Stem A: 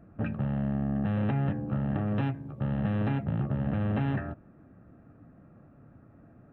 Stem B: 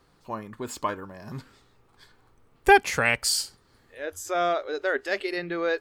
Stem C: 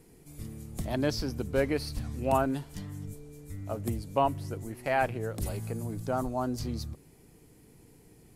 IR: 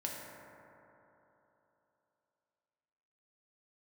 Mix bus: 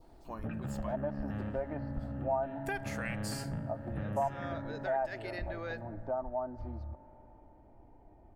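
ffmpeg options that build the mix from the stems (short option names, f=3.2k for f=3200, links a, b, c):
-filter_complex "[0:a]adelay=250,volume=-0.5dB,asplit=2[a][b];[b]volume=-8dB[c];[1:a]highshelf=f=10k:g=6.5,volume=-8dB,asplit=3[d][e][f];[e]volume=-20dB[g];[2:a]lowpass=f=750:t=q:w=5.3,equalizer=f=290:t=o:w=2.6:g=-11.5,aecho=1:1:3.3:0.65,volume=2.5dB,asplit=2[h][i];[i]volume=-23dB[j];[f]apad=whole_len=302993[k];[a][k]sidechaingate=range=-33dB:threshold=-55dB:ratio=16:detection=peak[l];[l][d]amix=inputs=2:normalize=0,acompressor=threshold=-32dB:ratio=2,volume=0dB[m];[3:a]atrim=start_sample=2205[n];[c][g][j]amix=inputs=3:normalize=0[o];[o][n]afir=irnorm=-1:irlink=0[p];[h][m][p]amix=inputs=3:normalize=0,adynamicequalizer=threshold=0.00708:dfrequency=1700:dqfactor=1.9:tfrequency=1700:tqfactor=1.9:attack=5:release=100:ratio=0.375:range=3:mode=boostabove:tftype=bell,acompressor=threshold=-41dB:ratio=2"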